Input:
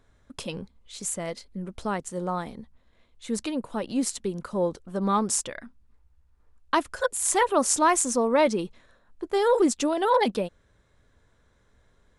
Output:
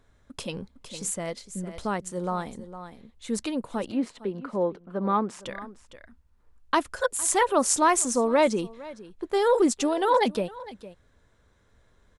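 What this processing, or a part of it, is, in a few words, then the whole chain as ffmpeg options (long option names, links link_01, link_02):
ducked delay: -filter_complex "[0:a]asettb=1/sr,asplit=3[link_01][link_02][link_03];[link_01]atrim=end=3.914[link_04];[link_02]atrim=start=3.91:end=5.43,asetpts=PTS-STARTPTS,afade=type=in:duration=0.004:curve=qsin,afade=type=out:start_time=1.516:duration=0.004:curve=qsin,acrossover=split=160 3100:gain=0.2 1 0.0631[link_05][link_06][link_07];[link_05][link_06][link_07]amix=inputs=3:normalize=0[link_08];[link_03]atrim=start=5.426[link_09];[link_04][link_08]acrossfade=duration=0.004:curve1=hsin:curve2=qsin[link_10];[link_10][link_09]acrossfade=duration=0.004:curve1=qsin:curve2=hsin,asplit=3[link_11][link_12][link_13];[link_12]adelay=458,volume=-7dB[link_14];[link_13]apad=whole_len=557467[link_15];[link_14][link_15]sidechaincompress=threshold=-33dB:ratio=8:attack=11:release=1150[link_16];[link_11][link_16]amix=inputs=2:normalize=0"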